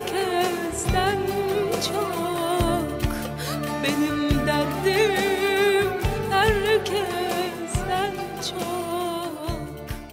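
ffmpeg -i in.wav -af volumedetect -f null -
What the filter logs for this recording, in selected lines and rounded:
mean_volume: -23.8 dB
max_volume: -7.7 dB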